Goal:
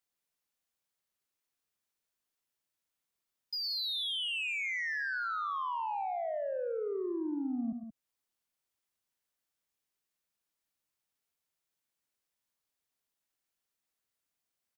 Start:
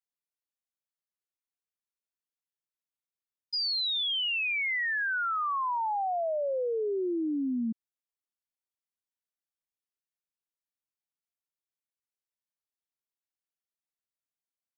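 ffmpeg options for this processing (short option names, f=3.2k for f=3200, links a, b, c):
-filter_complex "[0:a]acrossover=split=130[a][b];[b]acompressor=threshold=-50dB:ratio=2[c];[a][c]amix=inputs=2:normalize=0,asoftclip=type=tanh:threshold=-37dB,aecho=1:1:110.8|177.8:0.355|0.316,volume=6.5dB"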